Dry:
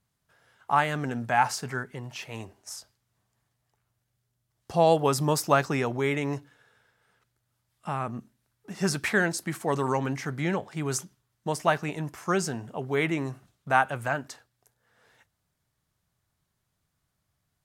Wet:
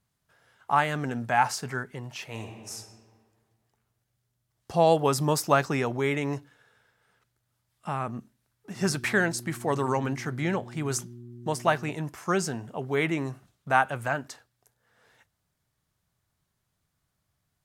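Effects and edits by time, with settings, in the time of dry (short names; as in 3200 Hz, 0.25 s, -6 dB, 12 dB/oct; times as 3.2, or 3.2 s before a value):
2.3–2.75 reverb throw, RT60 1.8 s, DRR 2.5 dB
8.75–11.94 buzz 120 Hz, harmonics 3, -44 dBFS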